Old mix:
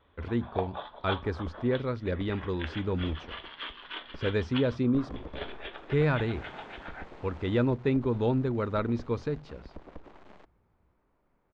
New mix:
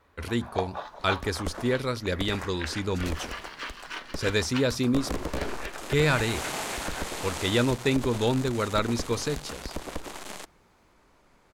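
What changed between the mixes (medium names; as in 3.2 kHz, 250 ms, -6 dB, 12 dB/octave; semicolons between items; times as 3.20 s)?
first sound: remove resonant low-pass 3.4 kHz, resonance Q 12; second sound +9.0 dB; master: remove tape spacing loss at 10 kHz 41 dB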